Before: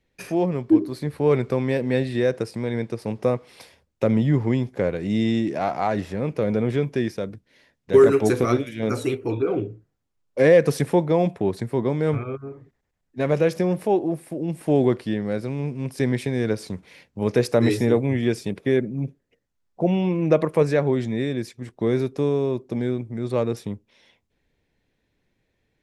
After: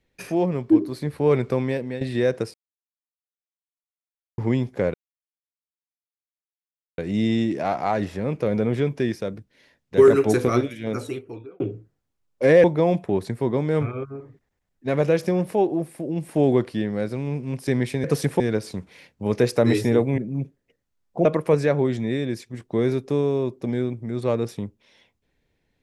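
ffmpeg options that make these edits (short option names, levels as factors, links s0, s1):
-filter_complex "[0:a]asplit=11[s0][s1][s2][s3][s4][s5][s6][s7][s8][s9][s10];[s0]atrim=end=2.01,asetpts=PTS-STARTPTS,afade=t=out:st=1.6:d=0.41:silence=0.223872[s11];[s1]atrim=start=2.01:end=2.54,asetpts=PTS-STARTPTS,afade=t=in:d=0.004:c=hsin:silence=0.223872,afade=t=out:st=0.526:d=0.004:c=hsin[s12];[s2]atrim=start=2.54:end=4.38,asetpts=PTS-STARTPTS,volume=0[s13];[s3]atrim=start=4.38:end=4.94,asetpts=PTS-STARTPTS,afade=t=in:d=0.004:c=hsin,afade=t=out:st=0.556:d=0.004:c=hsin,apad=pad_dur=2.04[s14];[s4]atrim=start=4.94:end=9.56,asetpts=PTS-STARTPTS,afade=t=in:d=0.004:c=hsin,afade=t=out:st=3.63:d=0.99[s15];[s5]atrim=start=9.56:end=10.602,asetpts=PTS-STARTPTS,afade=t=in:d=0.004:c=hsin[s16];[s6]atrim=start=10.958:end=16.362[s17];[s7]atrim=start=10.598:end=10.962[s18];[s8]atrim=start=16.358:end=18.142[s19];[s9]atrim=start=18.808:end=19.882[s20];[s10]atrim=start=20.328[s21];[s11][s12][s13][s14][s15][s16]concat=n=6:v=0:a=1[s22];[s22][s17]acrossfade=d=0.004:c1=hsin:c2=hsin[s23];[s23][s18]acrossfade=d=0.004:c1=hsin:c2=hsin[s24];[s24][s19]acrossfade=d=0.004:c1=hsin:c2=hsin[s25];[s25][s20]acrossfade=d=0.004:c1=hsin:c2=hsin[s26];[s26][s21]acrossfade=d=0.004:c1=hsin:c2=hsin"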